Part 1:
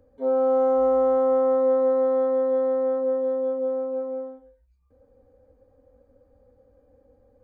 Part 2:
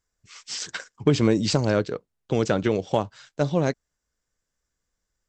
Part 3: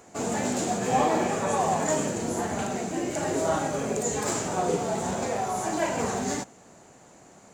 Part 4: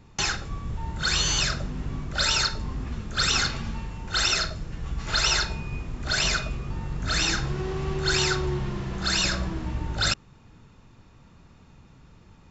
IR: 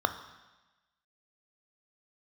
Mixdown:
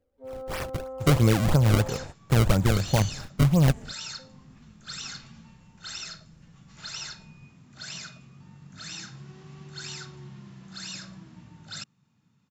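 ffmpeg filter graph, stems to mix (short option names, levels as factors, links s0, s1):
-filter_complex "[0:a]volume=0.15,asplit=3[s0][s1][s2];[s0]atrim=end=2.04,asetpts=PTS-STARTPTS,afade=t=out:st=2.036:d=0.004:c=hsin[s3];[s1]atrim=start=2.04:end=4.19,asetpts=PTS-STARTPTS,volume=0[s4];[s2]atrim=start=4.19,asetpts=PTS-STARTPTS,afade=t=in:d=0.004:c=hsin[s5];[s3][s4][s5]concat=n=3:v=0:a=1[s6];[1:a]acrusher=samples=29:mix=1:aa=0.000001:lfo=1:lforange=46.4:lforate=3,volume=0.794,asplit=2[s7][s8];[2:a]aeval=exprs='val(0)*sin(2*PI*100*n/s)':c=same,adelay=800,volume=0.178[s9];[3:a]highpass=f=170:w=0.5412,highpass=f=170:w=1.3066,highshelf=f=4400:g=8,adelay=1700,volume=0.133[s10];[s8]apad=whole_len=367480[s11];[s9][s11]sidechaingate=range=0.0224:threshold=0.00355:ratio=16:detection=peak[s12];[s6][s7][s12][s10]amix=inputs=4:normalize=0,asubboost=boost=11:cutoff=120"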